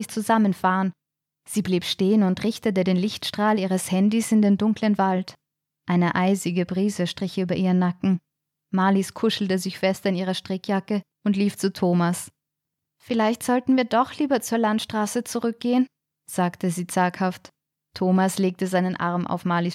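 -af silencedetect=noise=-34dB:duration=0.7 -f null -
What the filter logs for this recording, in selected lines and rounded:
silence_start: 12.28
silence_end: 13.10 | silence_duration: 0.82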